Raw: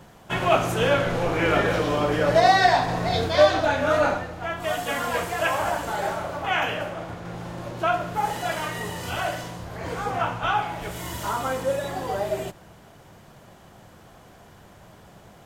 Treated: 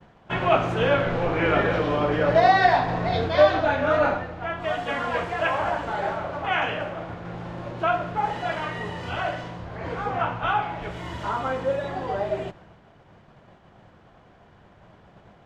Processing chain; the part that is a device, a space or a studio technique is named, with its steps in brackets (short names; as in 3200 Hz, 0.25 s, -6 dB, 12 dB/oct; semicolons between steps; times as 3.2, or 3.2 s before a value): hearing-loss simulation (LPF 3100 Hz 12 dB/oct; expander -45 dBFS); 6.33–8.12 high shelf 9400 Hz +9.5 dB